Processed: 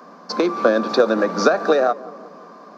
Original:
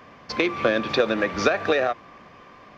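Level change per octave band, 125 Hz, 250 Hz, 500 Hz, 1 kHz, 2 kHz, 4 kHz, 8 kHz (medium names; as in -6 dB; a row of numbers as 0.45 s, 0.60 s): 0.0 dB, +5.0 dB, +6.0 dB, +5.5 dB, -0.5 dB, +0.5 dB, no reading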